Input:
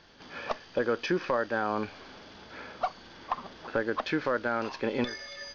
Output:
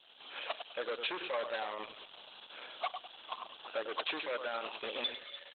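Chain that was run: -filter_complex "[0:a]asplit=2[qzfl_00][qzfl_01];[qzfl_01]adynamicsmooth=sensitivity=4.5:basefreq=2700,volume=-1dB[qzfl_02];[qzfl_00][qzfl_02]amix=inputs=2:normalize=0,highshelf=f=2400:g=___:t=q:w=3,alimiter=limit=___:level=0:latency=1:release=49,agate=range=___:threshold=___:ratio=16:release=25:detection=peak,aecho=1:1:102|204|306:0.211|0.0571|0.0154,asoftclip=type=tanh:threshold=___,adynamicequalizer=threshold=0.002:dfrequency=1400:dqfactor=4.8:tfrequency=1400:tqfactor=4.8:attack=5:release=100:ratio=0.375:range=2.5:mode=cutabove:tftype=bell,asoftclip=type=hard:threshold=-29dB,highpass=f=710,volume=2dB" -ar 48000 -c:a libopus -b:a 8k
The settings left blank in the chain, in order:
7, -13.5dB, -7dB, -31dB, -28dB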